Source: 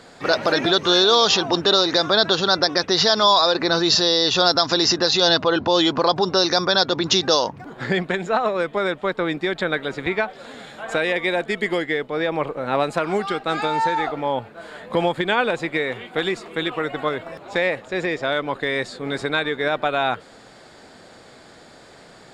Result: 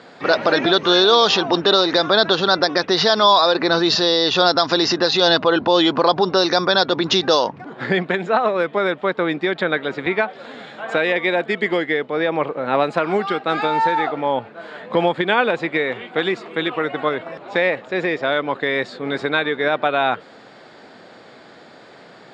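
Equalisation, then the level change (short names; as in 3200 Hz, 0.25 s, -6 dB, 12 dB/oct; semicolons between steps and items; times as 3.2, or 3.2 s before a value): BPF 150–4000 Hz; +3.0 dB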